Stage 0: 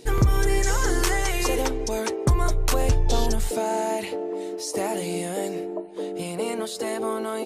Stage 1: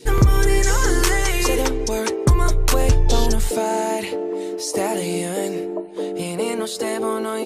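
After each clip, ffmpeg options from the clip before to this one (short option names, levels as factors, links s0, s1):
-af "adynamicequalizer=threshold=0.00794:dfrequency=720:dqfactor=3:tfrequency=720:tqfactor=3:attack=5:release=100:ratio=0.375:range=2.5:mode=cutabove:tftype=bell,volume=1.78"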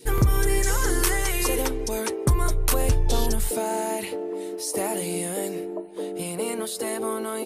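-af "aexciter=amount=3.7:drive=2.2:freq=9000,volume=0.531"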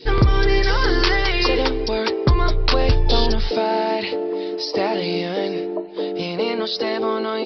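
-af "bass=f=250:g=-3,treble=f=4000:g=11,aresample=11025,aresample=44100,volume=2.24"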